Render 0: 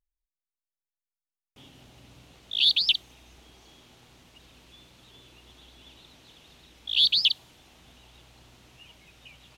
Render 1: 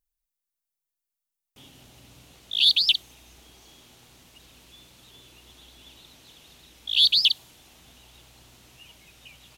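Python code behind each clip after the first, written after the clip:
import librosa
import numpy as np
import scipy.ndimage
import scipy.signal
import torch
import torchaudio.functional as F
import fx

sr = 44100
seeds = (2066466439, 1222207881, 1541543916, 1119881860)

y = fx.high_shelf(x, sr, hz=6700.0, db=11.5)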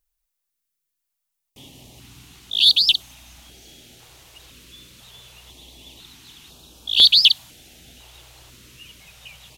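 y = fx.filter_held_notch(x, sr, hz=2.0, low_hz=220.0, high_hz=2000.0)
y = y * 10.0 ** (6.5 / 20.0)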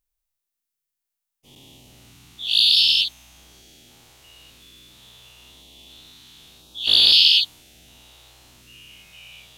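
y = fx.spec_dilate(x, sr, span_ms=240)
y = y * 10.0 ** (-9.0 / 20.0)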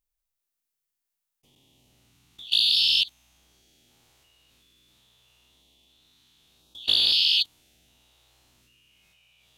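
y = fx.level_steps(x, sr, step_db=21)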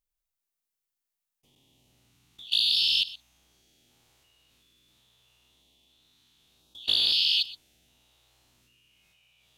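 y = x + 10.0 ** (-17.5 / 20.0) * np.pad(x, (int(123 * sr / 1000.0), 0))[:len(x)]
y = y * 10.0 ** (-3.0 / 20.0)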